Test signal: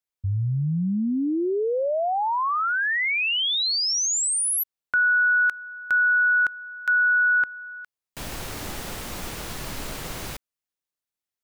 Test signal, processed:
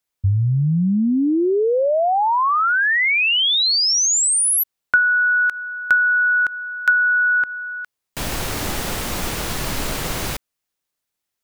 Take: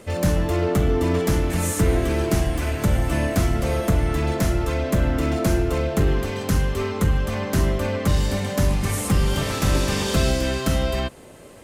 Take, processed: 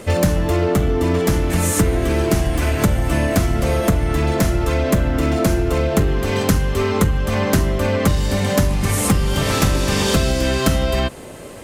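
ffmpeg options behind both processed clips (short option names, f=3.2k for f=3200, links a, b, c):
-af "acompressor=threshold=-26dB:ratio=6:attack=82:release=266:knee=1:detection=peak,volume=9dB"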